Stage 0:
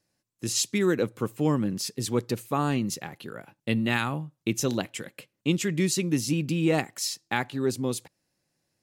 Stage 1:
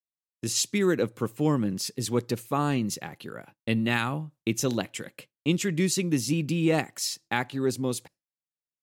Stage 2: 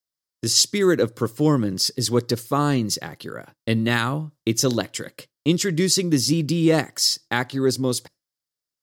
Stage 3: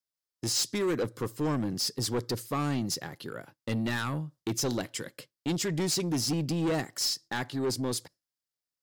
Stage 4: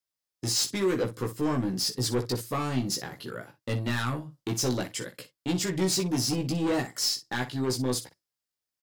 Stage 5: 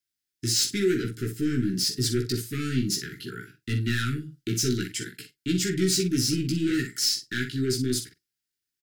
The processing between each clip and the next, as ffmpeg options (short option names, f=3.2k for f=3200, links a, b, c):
-af "agate=range=-33dB:threshold=-45dB:ratio=3:detection=peak"
-af "equalizer=f=200:t=o:w=0.33:g=-6,equalizer=f=800:t=o:w=0.33:g=-5,equalizer=f=2.5k:t=o:w=0.33:g=-9,equalizer=f=5k:t=o:w=0.33:g=8,volume=6.5dB"
-af "asoftclip=type=tanh:threshold=-19.5dB,volume=-5dB"
-af "aecho=1:1:16|60:0.708|0.251"
-filter_complex "[0:a]asuperstop=centerf=760:order=20:qfactor=0.82,asplit=2[a][b];[b]adelay=44,volume=-13dB[c];[a][c]amix=inputs=2:normalize=0,volume=2.5dB"